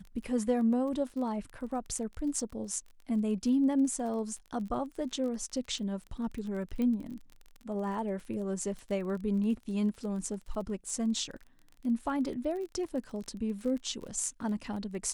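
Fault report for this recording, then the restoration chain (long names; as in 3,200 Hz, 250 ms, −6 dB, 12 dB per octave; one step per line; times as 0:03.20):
surface crackle 27 per second −39 dBFS
0:06.82: click −23 dBFS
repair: click removal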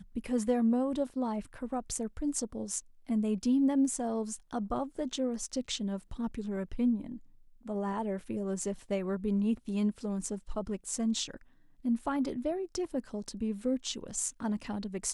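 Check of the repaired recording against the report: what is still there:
0:06.82: click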